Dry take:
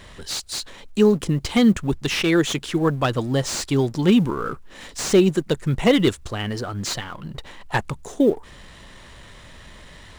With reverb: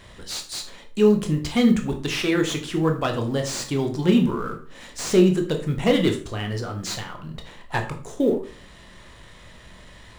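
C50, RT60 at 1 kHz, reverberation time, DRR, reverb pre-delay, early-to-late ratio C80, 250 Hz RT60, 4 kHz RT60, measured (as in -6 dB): 10.0 dB, 0.40 s, 0.40 s, 3.5 dB, 16 ms, 14.5 dB, 0.50 s, 0.35 s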